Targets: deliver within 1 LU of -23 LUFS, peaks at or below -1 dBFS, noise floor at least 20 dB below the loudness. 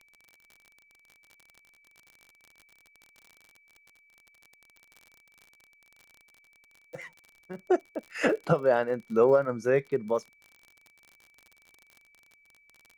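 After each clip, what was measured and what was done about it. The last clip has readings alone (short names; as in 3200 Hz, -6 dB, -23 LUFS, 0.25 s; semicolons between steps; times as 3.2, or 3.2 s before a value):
ticks 43/s; steady tone 2300 Hz; tone level -60 dBFS; loudness -26.5 LUFS; peak -9.5 dBFS; loudness target -23.0 LUFS
-> de-click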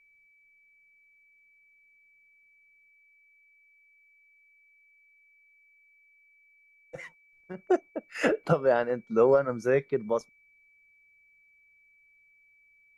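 ticks 0/s; steady tone 2300 Hz; tone level -60 dBFS
-> notch 2300 Hz, Q 30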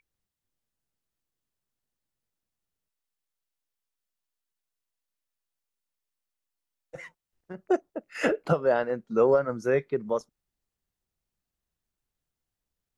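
steady tone none; loudness -26.5 LUFS; peak -9.5 dBFS; loudness target -23.0 LUFS
-> gain +3.5 dB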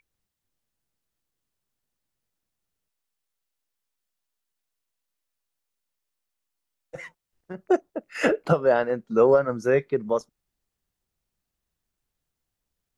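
loudness -23.0 LUFS; peak -6.0 dBFS; noise floor -84 dBFS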